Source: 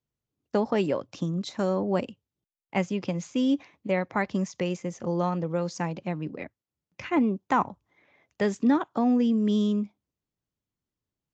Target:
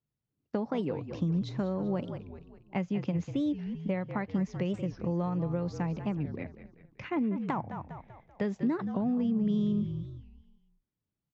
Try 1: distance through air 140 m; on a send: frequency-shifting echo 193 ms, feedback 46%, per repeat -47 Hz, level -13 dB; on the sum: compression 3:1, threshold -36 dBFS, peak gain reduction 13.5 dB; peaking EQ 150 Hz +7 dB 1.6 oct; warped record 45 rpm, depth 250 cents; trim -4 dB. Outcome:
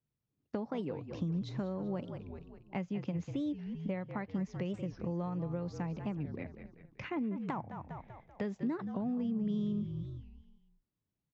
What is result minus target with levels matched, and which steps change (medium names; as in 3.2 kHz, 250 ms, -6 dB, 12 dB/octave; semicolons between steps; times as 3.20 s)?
compression: peak gain reduction +5.5 dB
change: compression 3:1, threshold -27.5 dBFS, peak gain reduction 8 dB